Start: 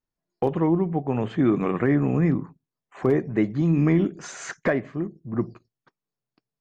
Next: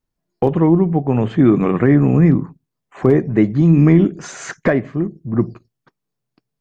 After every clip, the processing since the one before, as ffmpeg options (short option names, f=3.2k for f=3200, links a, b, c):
-af "lowshelf=f=320:g=6,volume=5dB"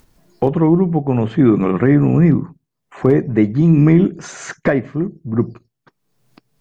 -af "acompressor=mode=upward:threshold=-34dB:ratio=2.5"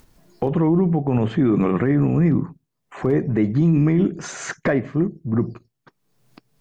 -af "alimiter=limit=-10dB:level=0:latency=1:release=42"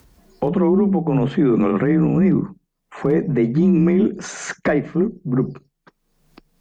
-af "afreqshift=26,volume=1.5dB"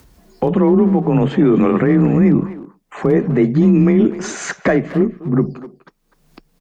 -filter_complex "[0:a]asplit=2[a][b];[b]adelay=250,highpass=300,lowpass=3.4k,asoftclip=type=hard:threshold=-16.5dB,volume=-13dB[c];[a][c]amix=inputs=2:normalize=0,volume=3.5dB"